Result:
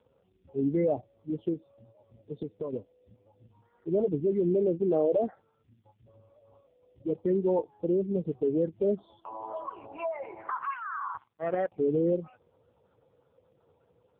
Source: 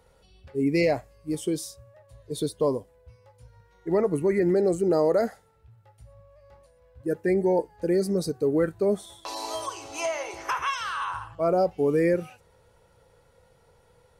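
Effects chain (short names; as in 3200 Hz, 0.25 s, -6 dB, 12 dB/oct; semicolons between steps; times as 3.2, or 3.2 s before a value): LPF 2400 Hz 12 dB/oct; spectral gate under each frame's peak -15 dB strong; 1.53–2.73 compressor 6:1, threshold -30 dBFS, peak gain reduction 10 dB; 11.17–11.72 power-law curve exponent 2; gain -2 dB; AMR-NB 5.15 kbps 8000 Hz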